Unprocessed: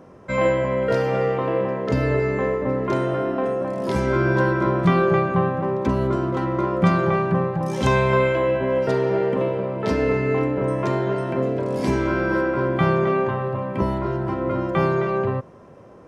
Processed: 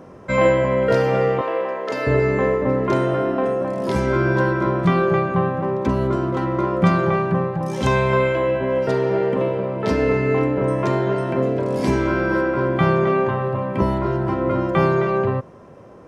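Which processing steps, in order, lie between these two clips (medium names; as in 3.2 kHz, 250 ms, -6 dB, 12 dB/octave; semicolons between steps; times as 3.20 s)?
1.41–2.07 s: high-pass 520 Hz 12 dB/octave; gain riding 2 s; trim +1.5 dB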